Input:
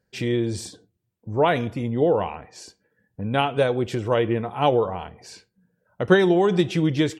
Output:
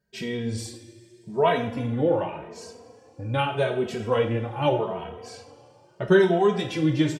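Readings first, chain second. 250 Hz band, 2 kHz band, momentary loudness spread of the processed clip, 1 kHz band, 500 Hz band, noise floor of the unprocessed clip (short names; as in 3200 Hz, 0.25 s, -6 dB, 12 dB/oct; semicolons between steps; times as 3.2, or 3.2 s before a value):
-3.0 dB, -2.5 dB, 18 LU, -2.5 dB, -2.0 dB, -74 dBFS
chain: two-slope reverb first 0.46 s, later 2.9 s, from -17 dB, DRR 3 dB; endless flanger 2.8 ms +0.82 Hz; gain -1 dB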